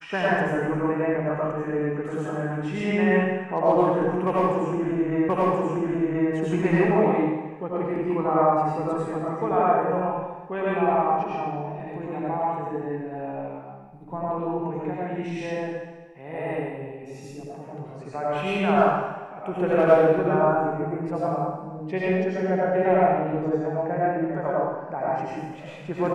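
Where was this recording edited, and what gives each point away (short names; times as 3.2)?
5.29 repeat of the last 1.03 s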